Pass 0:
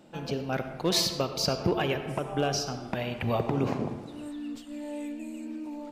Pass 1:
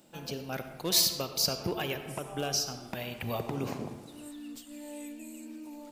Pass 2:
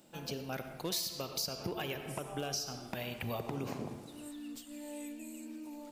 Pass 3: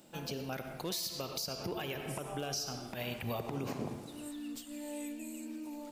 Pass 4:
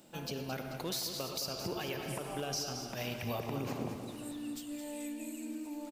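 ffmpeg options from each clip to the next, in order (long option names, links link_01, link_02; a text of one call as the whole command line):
ffmpeg -i in.wav -af "aemphasis=mode=production:type=75fm,volume=-6dB" out.wav
ffmpeg -i in.wav -af "acompressor=threshold=-32dB:ratio=6,volume=-1.5dB" out.wav
ffmpeg -i in.wav -af "alimiter=level_in=5.5dB:limit=-24dB:level=0:latency=1:release=89,volume=-5.5dB,volume=2.5dB" out.wav
ffmpeg -i in.wav -af "aecho=1:1:218|436|654|872|1090|1308:0.355|0.181|0.0923|0.0471|0.024|0.0122" out.wav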